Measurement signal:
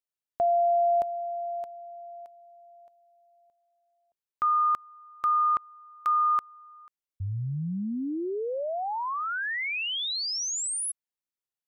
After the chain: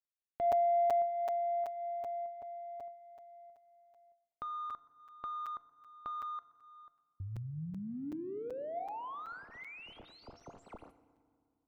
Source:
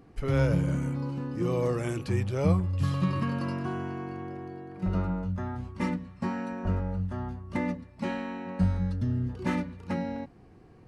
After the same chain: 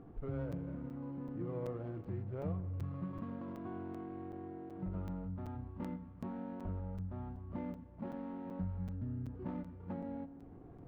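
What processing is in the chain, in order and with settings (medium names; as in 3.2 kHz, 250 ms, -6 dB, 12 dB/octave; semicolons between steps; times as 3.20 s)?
median filter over 25 samples; low-pass 1.5 kHz 12 dB/octave; compression 2:1, threshold -50 dBFS; feedback comb 690 Hz, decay 0.43 s, mix 70%; thinning echo 124 ms, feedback 58%, high-pass 370 Hz, level -21 dB; FDN reverb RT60 2.2 s, low-frequency decay 1.3×, high-frequency decay 0.55×, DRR 15 dB; crackling interface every 0.38 s, samples 256, zero, from 0.52 s; trim +11 dB; AAC 96 kbps 48 kHz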